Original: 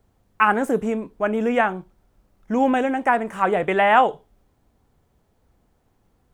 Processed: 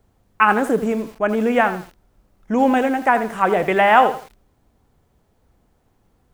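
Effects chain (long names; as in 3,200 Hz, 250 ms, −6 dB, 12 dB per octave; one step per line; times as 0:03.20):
feedback echo at a low word length 82 ms, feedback 35%, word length 6 bits, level −12 dB
level +2.5 dB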